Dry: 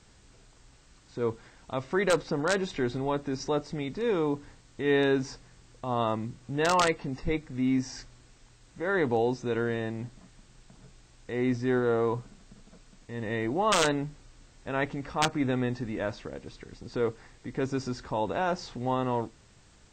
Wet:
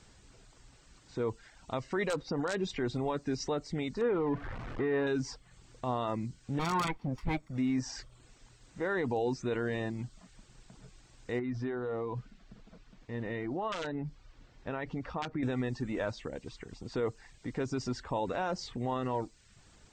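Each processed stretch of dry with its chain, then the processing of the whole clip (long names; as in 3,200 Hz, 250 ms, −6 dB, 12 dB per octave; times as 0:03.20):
0:04.01–0:05.07: converter with a step at zero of −31 dBFS + Chebyshev low-pass filter 1,500 Hz
0:06.59–0:07.58: lower of the sound and its delayed copy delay 0.88 ms + high-shelf EQ 3,600 Hz −7.5 dB
0:11.39–0:15.43: downward compressor 12 to 1, threshold −29 dBFS + high-frequency loss of the air 140 metres
whole clip: reverb reduction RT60 0.52 s; brickwall limiter −23 dBFS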